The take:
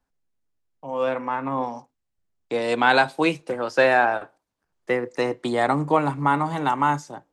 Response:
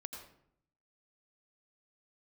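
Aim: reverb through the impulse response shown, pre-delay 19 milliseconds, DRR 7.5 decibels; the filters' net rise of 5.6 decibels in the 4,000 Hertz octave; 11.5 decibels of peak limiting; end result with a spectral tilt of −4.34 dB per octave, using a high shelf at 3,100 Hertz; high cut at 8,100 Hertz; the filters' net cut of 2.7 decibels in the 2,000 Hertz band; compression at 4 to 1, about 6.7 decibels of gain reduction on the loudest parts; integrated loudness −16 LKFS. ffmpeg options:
-filter_complex "[0:a]lowpass=8100,equalizer=frequency=2000:width_type=o:gain=-7,highshelf=frequency=3100:gain=7.5,equalizer=frequency=4000:width_type=o:gain=3.5,acompressor=threshold=-21dB:ratio=4,alimiter=limit=-20dB:level=0:latency=1,asplit=2[link_01][link_02];[1:a]atrim=start_sample=2205,adelay=19[link_03];[link_02][link_03]afir=irnorm=-1:irlink=0,volume=-4.5dB[link_04];[link_01][link_04]amix=inputs=2:normalize=0,volume=13.5dB"

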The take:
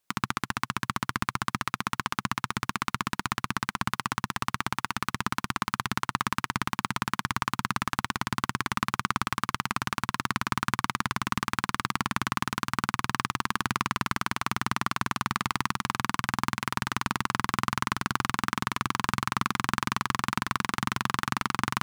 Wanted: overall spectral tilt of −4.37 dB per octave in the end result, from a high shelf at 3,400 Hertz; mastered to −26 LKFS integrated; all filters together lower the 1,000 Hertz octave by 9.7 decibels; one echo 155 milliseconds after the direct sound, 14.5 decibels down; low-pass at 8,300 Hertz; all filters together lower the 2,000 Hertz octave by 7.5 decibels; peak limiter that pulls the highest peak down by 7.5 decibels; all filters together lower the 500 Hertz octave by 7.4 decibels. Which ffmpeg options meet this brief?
ffmpeg -i in.wav -af "lowpass=8300,equalizer=frequency=500:width_type=o:gain=-9,equalizer=frequency=1000:width_type=o:gain=-8,equalizer=frequency=2000:width_type=o:gain=-4.5,highshelf=frequency=3400:gain=-5.5,alimiter=limit=-18.5dB:level=0:latency=1,aecho=1:1:155:0.188,volume=15dB" out.wav

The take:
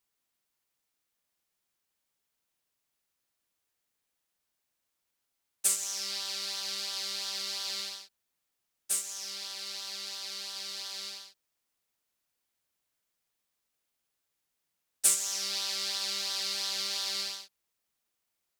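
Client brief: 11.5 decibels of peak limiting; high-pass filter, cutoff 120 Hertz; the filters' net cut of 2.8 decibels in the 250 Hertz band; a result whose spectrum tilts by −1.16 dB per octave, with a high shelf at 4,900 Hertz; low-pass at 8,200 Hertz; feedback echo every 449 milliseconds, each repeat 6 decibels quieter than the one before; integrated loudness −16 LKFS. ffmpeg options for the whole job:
ffmpeg -i in.wav -af "highpass=120,lowpass=8200,equalizer=frequency=250:width_type=o:gain=-4,highshelf=frequency=4900:gain=-5.5,alimiter=level_in=2dB:limit=-24dB:level=0:latency=1,volume=-2dB,aecho=1:1:449|898|1347|1796|2245|2694:0.501|0.251|0.125|0.0626|0.0313|0.0157,volume=20dB" out.wav

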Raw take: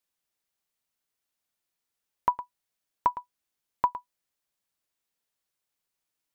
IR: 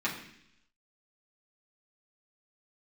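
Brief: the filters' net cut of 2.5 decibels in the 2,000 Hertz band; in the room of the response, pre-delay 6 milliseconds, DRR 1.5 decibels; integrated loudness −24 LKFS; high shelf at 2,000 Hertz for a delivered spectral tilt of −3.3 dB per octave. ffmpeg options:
-filter_complex "[0:a]highshelf=frequency=2000:gain=6,equalizer=frequency=2000:width_type=o:gain=-7,asplit=2[link_01][link_02];[1:a]atrim=start_sample=2205,adelay=6[link_03];[link_02][link_03]afir=irnorm=-1:irlink=0,volume=-9.5dB[link_04];[link_01][link_04]amix=inputs=2:normalize=0,volume=4.5dB"

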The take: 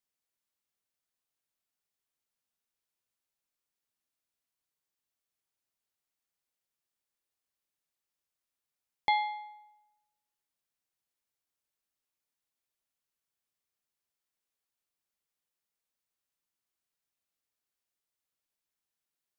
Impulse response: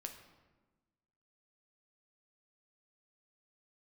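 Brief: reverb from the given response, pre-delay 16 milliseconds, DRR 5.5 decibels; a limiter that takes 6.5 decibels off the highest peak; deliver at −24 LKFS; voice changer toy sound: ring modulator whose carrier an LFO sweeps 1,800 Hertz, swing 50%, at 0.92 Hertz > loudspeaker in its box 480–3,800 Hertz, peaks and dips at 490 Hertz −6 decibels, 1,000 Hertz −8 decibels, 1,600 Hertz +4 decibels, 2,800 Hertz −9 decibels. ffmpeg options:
-filter_complex "[0:a]alimiter=limit=-23dB:level=0:latency=1,asplit=2[link_01][link_02];[1:a]atrim=start_sample=2205,adelay=16[link_03];[link_02][link_03]afir=irnorm=-1:irlink=0,volume=-2dB[link_04];[link_01][link_04]amix=inputs=2:normalize=0,aeval=exprs='val(0)*sin(2*PI*1800*n/s+1800*0.5/0.92*sin(2*PI*0.92*n/s))':channel_layout=same,highpass=480,equalizer=frequency=490:width_type=q:width=4:gain=-6,equalizer=frequency=1000:width_type=q:width=4:gain=-8,equalizer=frequency=1600:width_type=q:width=4:gain=4,equalizer=frequency=2800:width_type=q:width=4:gain=-9,lowpass=frequency=3800:width=0.5412,lowpass=frequency=3800:width=1.3066,volume=19dB"

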